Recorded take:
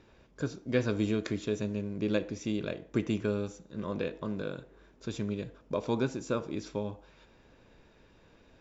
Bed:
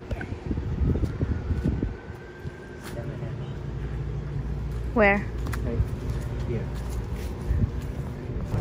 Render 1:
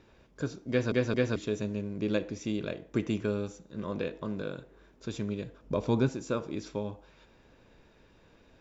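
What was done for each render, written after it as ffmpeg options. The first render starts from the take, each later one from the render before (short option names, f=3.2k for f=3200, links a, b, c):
-filter_complex "[0:a]asettb=1/sr,asplit=3[a][b][c];[a]atrim=end=5.634[d];[b]atrim=start=5.63:end=6.09,asetpts=PTS-STARTPTS,afade=t=in:d=0.004:c=qsin,afade=t=out:st=0.456:d=0.004:c=qsin,lowshelf=f=190:g=10[e];[c]atrim=start=6.086[f];[d][e]acrossfade=d=0.004:c1=hsin:c2=qsin[g];[g][f]acrossfade=d=0.004:c1=qsin:c2=hsin,asplit=4[h][i][j][k];[h]atrim=end=0.922[l];[i]atrim=start=0.698:end=0.922[m];[j]atrim=start=0.698:end=0.922[n];[k]atrim=start=1.358[o];[l][m]acrossfade=d=0.004:c1=hsin:c2=hsin[p];[p][n]acrossfade=d=0.004:c1=hsin:c2=hsin[q];[q][o]acrossfade=d=0.004:c1=hsin:c2=hsin"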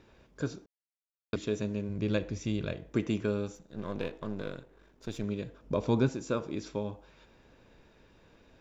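-filter_complex "[0:a]asplit=3[a][b][c];[a]afade=t=out:st=1.88:d=0.02[d];[b]asubboost=boost=4.5:cutoff=140,afade=t=in:st=1.88:d=0.02,afade=t=out:st=2.89:d=0.02[e];[c]afade=t=in:st=2.89:d=0.02[f];[d][e][f]amix=inputs=3:normalize=0,asettb=1/sr,asplit=3[g][h][i];[g]atrim=end=3.554[j];[h]atrim=start=3.55:end=5.24,asetpts=PTS-STARTPTS,afade=t=in:d=0.004:c=qsin,afade=t=out:st=1.686:d=0.004:c=qsin,aeval=exprs='if(lt(val(0),0),0.447*val(0),val(0))':c=same[k];[i]atrim=start=5.236[l];[j][k]acrossfade=d=0.004:c1=hsin:c2=qsin[m];[m][l]acrossfade=d=0.004:c1=qsin:c2=hsin,asplit=3[n][o][p];[n]atrim=end=0.66,asetpts=PTS-STARTPTS,afade=t=out:st=0.656:d=0.004:c=hsin[q];[o]atrim=start=0.66:end=1.33,asetpts=PTS-STARTPTS,volume=0[r];[p]atrim=start=1.33,asetpts=PTS-STARTPTS,afade=t=in:d=0.004:c=hsin[s];[q][r][s]concat=n=3:v=0:a=1"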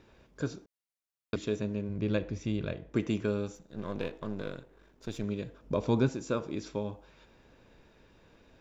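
-filter_complex "[0:a]asettb=1/sr,asplit=3[a][b][c];[a]atrim=end=1.564[d];[b]atrim=start=1.56:end=2.96,asetpts=PTS-STARTPTS,afade=t=in:d=0.004:c=qsin,afade=t=out:st=1.396:d=0.004:c=qsin,lowpass=f=3.6k:p=1[e];[c]atrim=start=2.956[f];[d][e]acrossfade=d=0.004:c1=hsin:c2=qsin[g];[g][f]acrossfade=d=0.004:c1=qsin:c2=hsin"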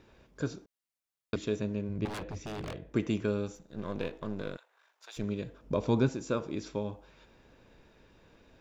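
-filter_complex "[0:a]asettb=1/sr,asplit=3[a][b][c];[a]atrim=end=2.054[d];[b]atrim=start=2.05:end=2.85,asetpts=PTS-STARTPTS,afade=t=in:d=0.004:c=qsin,afade=t=out:st=0.796:d=0.004:c=qsin,aeval=exprs='0.0224*(abs(mod(val(0)/0.0224+3,4)-2)-1)':c=same[e];[c]atrim=start=2.846[f];[d][e]acrossfade=d=0.004:c1=hsin:c2=qsin[g];[g][f]acrossfade=d=0.004:c1=qsin:c2=hsin,asettb=1/sr,asplit=3[h][i][j];[h]atrim=end=4.574[k];[i]atrim=start=4.57:end=5.17,asetpts=PTS-STARTPTS,afade=t=in:d=0.004:c=qsin,afade=t=out:st=0.596:d=0.004:c=qsin,highpass=f=770:w=0.5412,highpass=f=770:w=1.3066[l];[j]atrim=start=5.166[m];[k][l]acrossfade=d=0.004:c1=hsin:c2=qsin[n];[n][m]acrossfade=d=0.004:c1=qsin:c2=hsin"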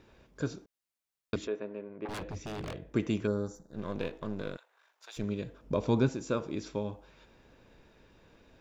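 -filter_complex "[0:a]asettb=1/sr,asplit=3[a][b][c];[a]atrim=end=1.474[d];[b]atrim=start=1.47:end=2.09,asetpts=PTS-STARTPTS,afade=t=in:d=0.004:c=qsin,afade=t=out:st=0.616:d=0.004:c=qsin,asuperpass=centerf=870:order=4:qfactor=0.51[e];[c]atrim=start=2.086[f];[d][e]acrossfade=d=0.004:c1=hsin:c2=qsin[g];[g][f]acrossfade=d=0.004:c1=qsin:c2=hsin,asettb=1/sr,asplit=3[h][i][j];[h]atrim=end=3.274[k];[i]atrim=start=3.27:end=3.74,asetpts=PTS-STARTPTS,afade=t=in:d=0.004:c=qsin,afade=t=out:st=0.466:d=0.004:c=qsin,asuperstop=centerf=2700:order=4:qfactor=0.93[l];[j]atrim=start=3.736[m];[k][l]acrossfade=d=0.004:c1=hsin:c2=qsin[n];[n][m]acrossfade=d=0.004:c1=qsin:c2=hsin"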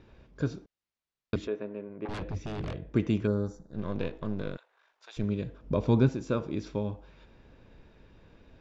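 -af "lowpass=5.1k,lowshelf=f=200:g=8"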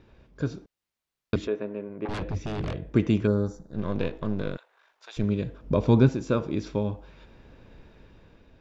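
-af "dynaudnorm=f=170:g=7:m=4.5dB"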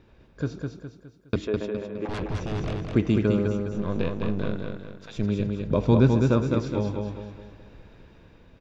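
-af "aecho=1:1:207|414|621|828|1035:0.631|0.265|0.111|0.0467|0.0196"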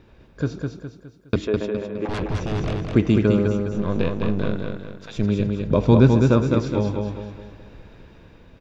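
-af "volume=4.5dB"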